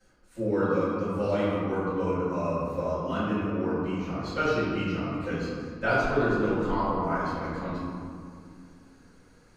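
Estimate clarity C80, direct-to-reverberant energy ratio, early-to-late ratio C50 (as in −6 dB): −1.0 dB, −16.0 dB, −3.0 dB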